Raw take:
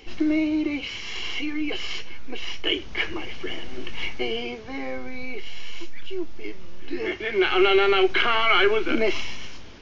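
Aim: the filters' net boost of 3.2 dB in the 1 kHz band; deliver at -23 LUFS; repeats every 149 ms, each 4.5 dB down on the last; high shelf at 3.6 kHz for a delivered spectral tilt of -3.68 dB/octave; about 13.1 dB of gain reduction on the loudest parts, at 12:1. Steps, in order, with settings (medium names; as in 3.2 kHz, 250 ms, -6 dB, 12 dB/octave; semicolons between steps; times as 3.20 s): peaking EQ 1 kHz +4 dB; treble shelf 3.6 kHz +5 dB; compression 12:1, threshold -26 dBFS; feedback delay 149 ms, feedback 60%, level -4.5 dB; trim +7.5 dB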